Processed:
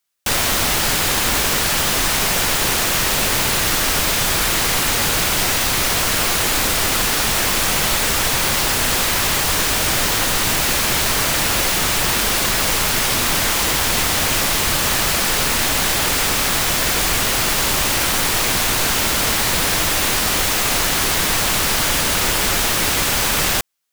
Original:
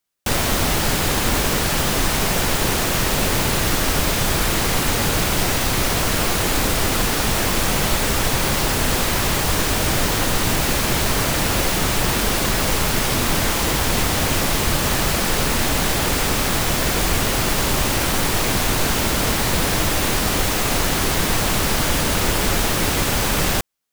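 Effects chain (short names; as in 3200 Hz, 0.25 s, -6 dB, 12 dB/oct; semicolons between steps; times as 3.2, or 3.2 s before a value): tilt shelf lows -4.5 dB, about 740 Hz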